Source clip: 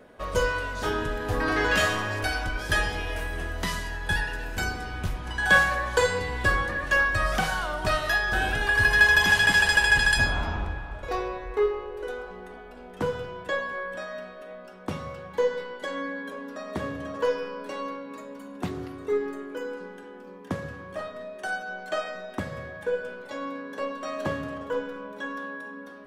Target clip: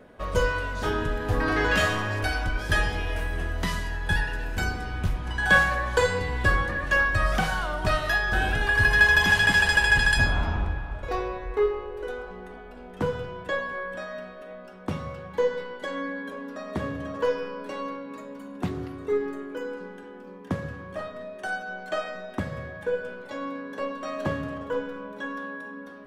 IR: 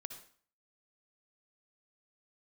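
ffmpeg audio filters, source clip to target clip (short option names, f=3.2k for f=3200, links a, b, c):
-af "bass=f=250:g=4,treble=f=4k:g=-3"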